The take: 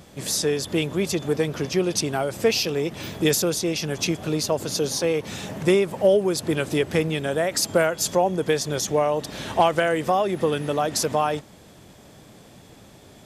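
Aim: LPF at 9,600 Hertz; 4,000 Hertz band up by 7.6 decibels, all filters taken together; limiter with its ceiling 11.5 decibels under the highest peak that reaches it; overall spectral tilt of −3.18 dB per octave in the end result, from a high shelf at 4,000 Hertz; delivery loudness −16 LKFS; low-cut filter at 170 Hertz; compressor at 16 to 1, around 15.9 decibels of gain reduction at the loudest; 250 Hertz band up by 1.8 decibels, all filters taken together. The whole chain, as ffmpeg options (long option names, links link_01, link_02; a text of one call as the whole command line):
ffmpeg -i in.wav -af "highpass=170,lowpass=9600,equalizer=frequency=250:width_type=o:gain=4,highshelf=frequency=4000:gain=8,equalizer=frequency=4000:width_type=o:gain=4.5,acompressor=threshold=-28dB:ratio=16,volume=21dB,alimiter=limit=-6.5dB:level=0:latency=1" out.wav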